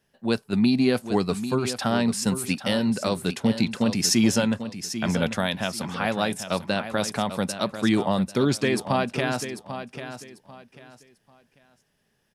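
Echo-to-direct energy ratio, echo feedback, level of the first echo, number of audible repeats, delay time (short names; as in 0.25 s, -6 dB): -10.0 dB, 26%, -10.5 dB, 3, 0.793 s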